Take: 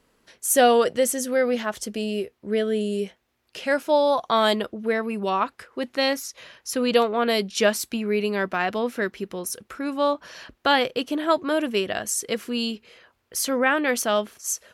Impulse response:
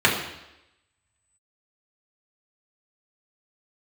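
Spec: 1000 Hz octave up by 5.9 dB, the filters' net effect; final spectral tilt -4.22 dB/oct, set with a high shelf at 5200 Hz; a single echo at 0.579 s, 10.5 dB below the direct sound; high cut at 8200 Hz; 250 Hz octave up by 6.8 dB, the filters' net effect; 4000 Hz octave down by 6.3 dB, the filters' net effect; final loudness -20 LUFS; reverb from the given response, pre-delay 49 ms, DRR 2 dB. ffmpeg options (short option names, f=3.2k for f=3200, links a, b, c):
-filter_complex "[0:a]lowpass=8.2k,equalizer=f=250:t=o:g=7.5,equalizer=f=1k:t=o:g=8,equalizer=f=4k:t=o:g=-7,highshelf=f=5.2k:g=-6,aecho=1:1:579:0.299,asplit=2[a][b];[1:a]atrim=start_sample=2205,adelay=49[c];[b][c]afir=irnorm=-1:irlink=0,volume=-22.5dB[d];[a][d]amix=inputs=2:normalize=0,volume=-2dB"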